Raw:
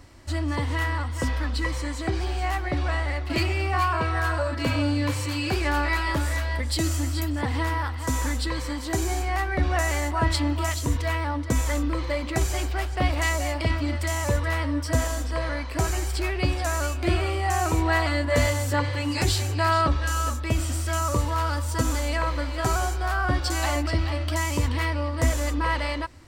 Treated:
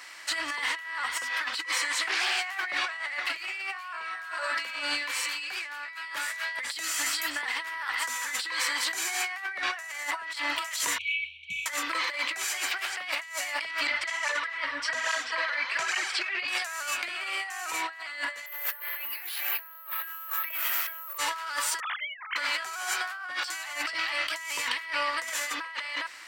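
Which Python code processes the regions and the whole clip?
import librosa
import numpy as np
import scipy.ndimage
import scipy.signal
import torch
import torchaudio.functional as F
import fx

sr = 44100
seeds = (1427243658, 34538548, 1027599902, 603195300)

y = fx.chain(x, sr, fx.low_shelf(hz=180.0, db=-11.5),
    fx.doppler_dist(depth_ms=0.35), at=(1.92, 2.41))
y = fx.chain(y, sr, fx.brickwall_bandstop(low_hz=210.0, high_hz=2200.0),
    fx.air_absorb(metres=250.0),
    fx.fixed_phaser(hz=2100.0, stages=4), at=(10.98, 11.66))
y = fx.chain(y, sr, fx.lowpass(hz=4900.0, slope=12),
    fx.flanger_cancel(hz=1.2, depth_ms=7.0), at=(13.87, 16.48))
y = fx.chain(y, sr, fx.bandpass_edges(low_hz=420.0, high_hz=2700.0),
    fx.resample_bad(factor=3, down='none', up='zero_stuff'), at=(18.46, 21.18))
y = fx.chain(y, sr, fx.sine_speech(),
    fx.highpass(hz=930.0, slope=24), at=(21.8, 22.36))
y = scipy.signal.sosfilt(scipy.signal.butter(2, 1300.0, 'highpass', fs=sr, output='sos'), y)
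y = fx.peak_eq(y, sr, hz=2000.0, db=6.5, octaves=1.4)
y = fx.over_compress(y, sr, threshold_db=-37.0, ratio=-1.0)
y = y * librosa.db_to_amplitude(3.0)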